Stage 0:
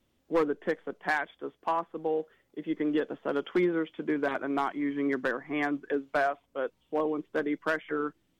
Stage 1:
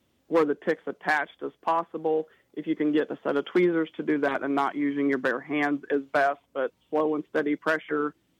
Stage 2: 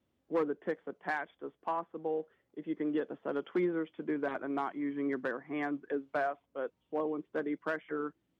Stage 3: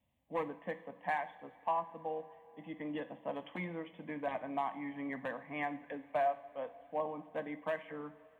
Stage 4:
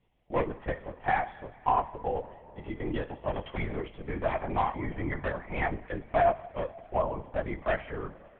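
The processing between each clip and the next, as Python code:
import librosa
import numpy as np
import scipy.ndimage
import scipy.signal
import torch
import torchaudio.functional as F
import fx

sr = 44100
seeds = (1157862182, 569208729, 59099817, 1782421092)

y1 = scipy.signal.sosfilt(scipy.signal.butter(2, 62.0, 'highpass', fs=sr, output='sos'), x)
y1 = y1 * librosa.db_to_amplitude(4.0)
y2 = fx.high_shelf(y1, sr, hz=2700.0, db=-9.5)
y2 = y2 * librosa.db_to_amplitude(-8.5)
y3 = fx.fixed_phaser(y2, sr, hz=1400.0, stages=6)
y3 = fx.rev_double_slope(y3, sr, seeds[0], early_s=0.49, late_s=4.5, knee_db=-18, drr_db=9.5)
y3 = y3 * librosa.db_to_amplitude(2.0)
y4 = fx.lpc_vocoder(y3, sr, seeds[1], excitation='whisper', order=10)
y4 = y4 * librosa.db_to_amplitude(8.0)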